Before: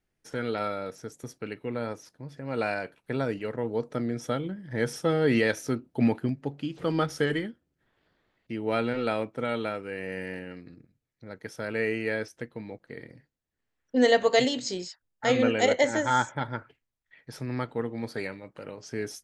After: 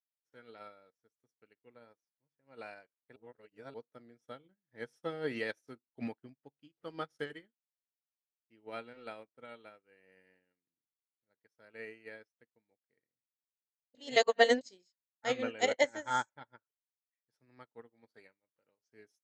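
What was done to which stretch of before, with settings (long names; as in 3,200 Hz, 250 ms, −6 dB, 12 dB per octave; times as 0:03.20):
0:03.16–0:03.74: reverse
0:13.95–0:14.61: reverse
whole clip: low-shelf EQ 270 Hz −10 dB; expander for the loud parts 2.5 to 1, over −48 dBFS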